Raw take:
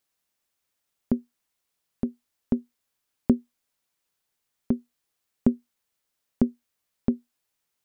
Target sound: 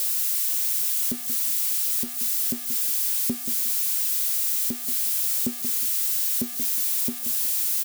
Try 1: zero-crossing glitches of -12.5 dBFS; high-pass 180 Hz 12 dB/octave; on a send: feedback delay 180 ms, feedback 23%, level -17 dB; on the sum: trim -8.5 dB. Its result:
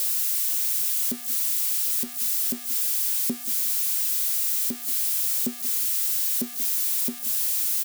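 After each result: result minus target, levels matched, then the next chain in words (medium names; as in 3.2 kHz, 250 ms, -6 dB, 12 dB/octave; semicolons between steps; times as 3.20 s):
echo-to-direct -6.5 dB; 125 Hz band -4.5 dB
zero-crossing glitches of -12.5 dBFS; high-pass 180 Hz 12 dB/octave; on a send: feedback delay 180 ms, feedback 23%, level -10.5 dB; on the sum: trim -8.5 dB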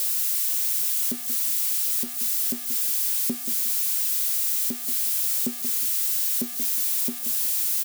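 125 Hz band -4.5 dB
zero-crossing glitches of -12.5 dBFS; high-pass 70 Hz 12 dB/octave; on a send: feedback delay 180 ms, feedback 23%, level -10.5 dB; on the sum: trim -8.5 dB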